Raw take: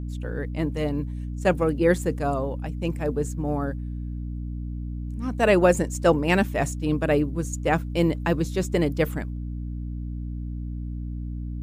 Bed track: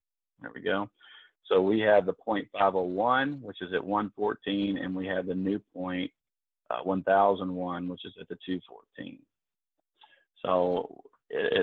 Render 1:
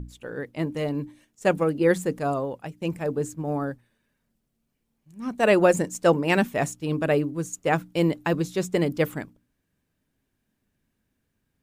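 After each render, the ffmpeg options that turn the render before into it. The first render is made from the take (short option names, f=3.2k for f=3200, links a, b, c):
-af "bandreject=f=60:t=h:w=6,bandreject=f=120:t=h:w=6,bandreject=f=180:t=h:w=6,bandreject=f=240:t=h:w=6,bandreject=f=300:t=h:w=6"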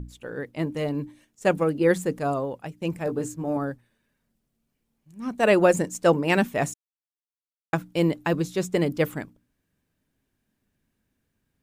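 -filter_complex "[0:a]asettb=1/sr,asplit=3[a][b][c];[a]atrim=end=3.054[d];[b]atrim=start=3.05:end=3.57,asetpts=PTS-STARTPTS,afade=t=in:d=0.004:c=qsin,afade=t=out:st=0.516:d=0.004:c=qsin,asplit=2[e][f];[f]adelay=17,volume=-5dB[g];[e][g]amix=inputs=2:normalize=0,atrim=end_sample=22932[h];[c]atrim=start=3.566[i];[d][h]acrossfade=d=0.004:c1=hsin:c2=qsin[j];[j][i]acrossfade=d=0.004:c1=qsin:c2=hsin,asplit=3[k][l][m];[k]atrim=end=6.74,asetpts=PTS-STARTPTS,afade=t=out:st=6.736:d=0.004:c=hsin[n];[l]atrim=start=6.74:end=7.73,asetpts=PTS-STARTPTS,volume=0[o];[m]atrim=start=7.73,asetpts=PTS-STARTPTS,afade=t=in:d=0.004:c=hsin[p];[n][o][p]concat=n=3:v=0:a=1"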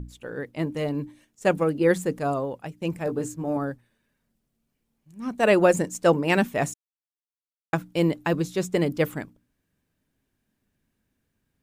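-af anull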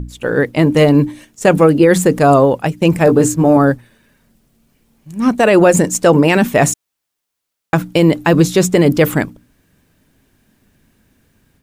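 -af "dynaudnorm=f=130:g=3:m=8dB,alimiter=level_in=11dB:limit=-1dB:release=50:level=0:latency=1"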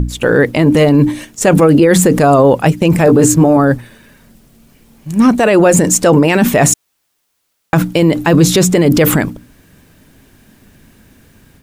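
-af "alimiter=level_in=11dB:limit=-1dB:release=50:level=0:latency=1"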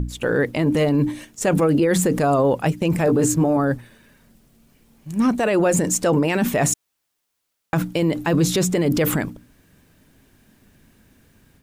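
-af "volume=-9.5dB"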